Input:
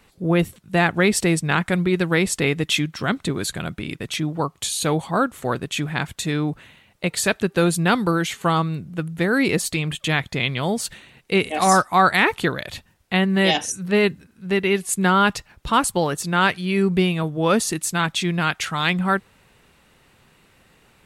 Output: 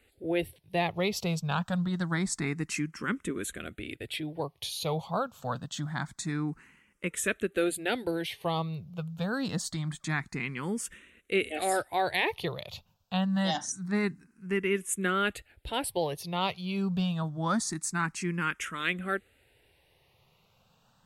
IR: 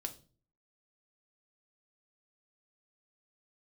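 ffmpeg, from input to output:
-filter_complex "[0:a]asplit=2[a][b];[b]afreqshift=0.26[c];[a][c]amix=inputs=2:normalize=1,volume=-7dB"

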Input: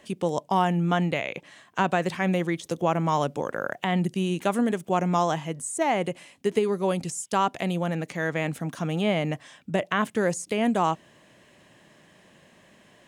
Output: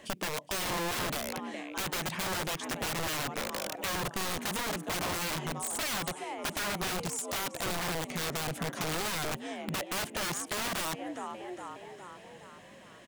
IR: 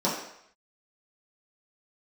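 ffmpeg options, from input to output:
-filter_complex "[0:a]asplit=6[a][b][c][d][e][f];[b]adelay=413,afreqshift=62,volume=-17dB[g];[c]adelay=826,afreqshift=124,volume=-22.2dB[h];[d]adelay=1239,afreqshift=186,volume=-27.4dB[i];[e]adelay=1652,afreqshift=248,volume=-32.6dB[j];[f]adelay=2065,afreqshift=310,volume=-37.8dB[k];[a][g][h][i][j][k]amix=inputs=6:normalize=0,aeval=exprs='(mod(16.8*val(0)+1,2)-1)/16.8':c=same,acompressor=threshold=-36dB:ratio=2.5,volume=2dB"

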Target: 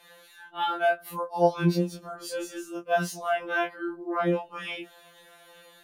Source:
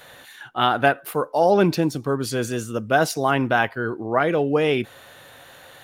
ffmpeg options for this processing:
-af "afftfilt=real='re':imag='-im':win_size=2048:overlap=0.75,afftfilt=real='re*2.83*eq(mod(b,8),0)':imag='im*2.83*eq(mod(b,8),0)':win_size=2048:overlap=0.75,volume=-3.5dB"

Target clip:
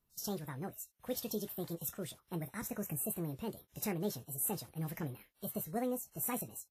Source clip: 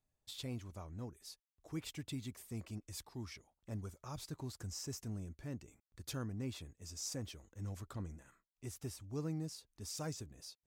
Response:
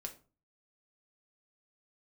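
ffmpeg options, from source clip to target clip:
-filter_complex "[0:a]aexciter=amount=5.3:drive=2:freq=7.5k,asetrate=70119,aresample=44100,asplit=2[a][b];[b]aecho=0:1:14|24:0.251|0.188[c];[a][c]amix=inputs=2:normalize=0,volume=4dB" -ar 32000 -c:a wmav2 -b:a 64k

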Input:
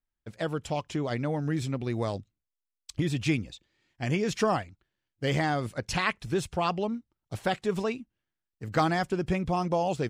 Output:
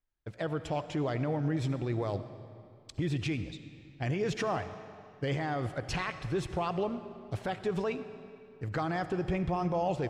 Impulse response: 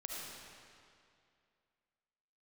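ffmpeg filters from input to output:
-filter_complex "[0:a]lowpass=f=2.5k:p=1,equalizer=f=220:t=o:w=0.26:g=-8.5,alimiter=level_in=0.5dB:limit=-24dB:level=0:latency=1:release=78,volume=-0.5dB,asplit=2[a][b];[1:a]atrim=start_sample=2205[c];[b][c]afir=irnorm=-1:irlink=0,volume=-7.5dB[d];[a][d]amix=inputs=2:normalize=0"

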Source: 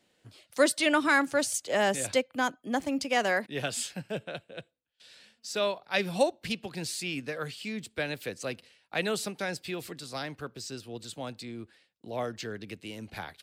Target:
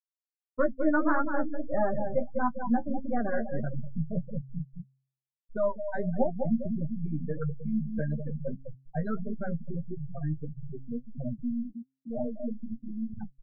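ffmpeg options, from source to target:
-filter_complex "[0:a]aeval=exprs='if(lt(val(0),0),0.708*val(0),val(0))':c=same,lowshelf=f=260:t=q:w=1.5:g=7,asplit=2[a][b];[b]adelay=198,lowpass=f=1.3k:p=1,volume=-5.5dB,asplit=2[c][d];[d]adelay=198,lowpass=f=1.3k:p=1,volume=0.54,asplit=2[e][f];[f]adelay=198,lowpass=f=1.3k:p=1,volume=0.54,asplit=2[g][h];[h]adelay=198,lowpass=f=1.3k:p=1,volume=0.54,asplit=2[i][j];[j]adelay=198,lowpass=f=1.3k:p=1,volume=0.54,asplit=2[k][l];[l]adelay=198,lowpass=f=1.3k:p=1,volume=0.54,asplit=2[m][n];[n]adelay=198,lowpass=f=1.3k:p=1,volume=0.54[o];[c][e][g][i][k][m][o]amix=inputs=7:normalize=0[p];[a][p]amix=inputs=2:normalize=0,acrossover=split=3300[q][r];[r]acompressor=threshold=-46dB:ratio=4:attack=1:release=60[s];[q][s]amix=inputs=2:normalize=0,equalizer=f=3k:w=1.4:g=12.5,asplit=2[t][u];[u]adelay=13,volume=-4dB[v];[t][v]amix=inputs=2:normalize=0,afftfilt=real='re*gte(hypot(re,im),0.112)':imag='im*gte(hypot(re,im),0.112)':win_size=1024:overlap=0.75,flanger=delay=7.9:depth=5.2:regen=34:speed=1.6:shape=sinusoidal,asplit=2[w][x];[x]acompressor=threshold=-36dB:ratio=6,volume=0.5dB[y];[w][y]amix=inputs=2:normalize=0,asuperstop=centerf=2900:order=8:qfactor=0.66,bandreject=f=133.2:t=h:w=4,bandreject=f=266.4:t=h:w=4"

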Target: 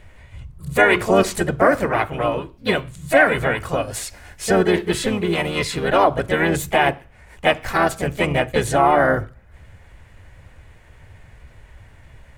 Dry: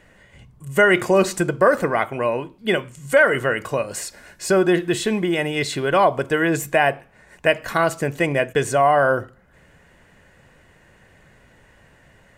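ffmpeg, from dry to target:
-filter_complex "[0:a]lowshelf=f=120:t=q:w=1.5:g=11.5,asplit=4[a][b][c][d];[b]asetrate=22050,aresample=44100,atempo=2,volume=-8dB[e];[c]asetrate=52444,aresample=44100,atempo=0.840896,volume=-4dB[f];[d]asetrate=58866,aresample=44100,atempo=0.749154,volume=-16dB[g];[a][e][f][g]amix=inputs=4:normalize=0,volume=-1dB"

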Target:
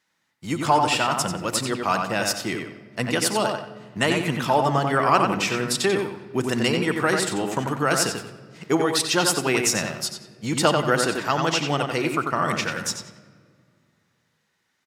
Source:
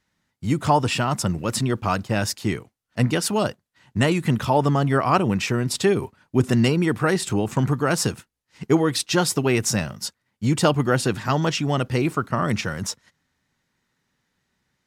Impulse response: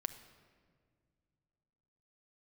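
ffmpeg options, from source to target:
-filter_complex "[0:a]highpass=f=540:p=1,asplit=2[a][b];[b]adelay=91,lowpass=f=3.6k:p=1,volume=-4dB,asplit=2[c][d];[d]adelay=91,lowpass=f=3.6k:p=1,volume=0.35,asplit=2[e][f];[f]adelay=91,lowpass=f=3.6k:p=1,volume=0.35,asplit=2[g][h];[h]adelay=91,lowpass=f=3.6k:p=1,volume=0.35[i];[a][c][e][g][i]amix=inputs=5:normalize=0,asplit=2[j][k];[1:a]atrim=start_sample=2205[l];[k][l]afir=irnorm=-1:irlink=0,volume=5.5dB[m];[j][m]amix=inputs=2:normalize=0,volume=-6.5dB"

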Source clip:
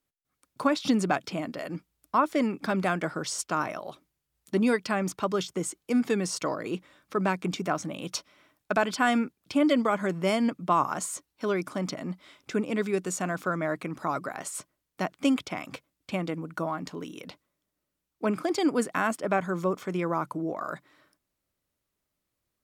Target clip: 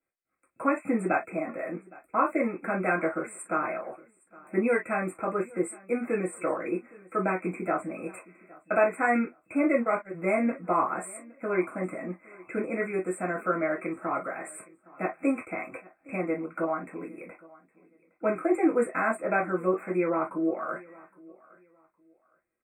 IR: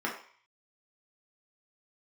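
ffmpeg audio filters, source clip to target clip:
-filter_complex "[0:a]aecho=1:1:814|1628:0.0708|0.0177,asplit=3[a][b][c];[a]afade=t=out:st=9.7:d=0.02[d];[b]agate=range=-32dB:threshold=-24dB:ratio=16:detection=peak,afade=t=in:st=9.7:d=0.02,afade=t=out:st=10.13:d=0.02[e];[c]afade=t=in:st=10.13:d=0.02[f];[d][e][f]amix=inputs=3:normalize=0[g];[1:a]atrim=start_sample=2205,afade=t=out:st=0.15:d=0.01,atrim=end_sample=7056,asetrate=70560,aresample=44100[h];[g][h]afir=irnorm=-1:irlink=0,afftfilt=real='re*(1-between(b*sr/4096,2600,7200))':imag='im*(1-between(b*sr/4096,2600,7200))':win_size=4096:overlap=0.75,volume=-3dB"

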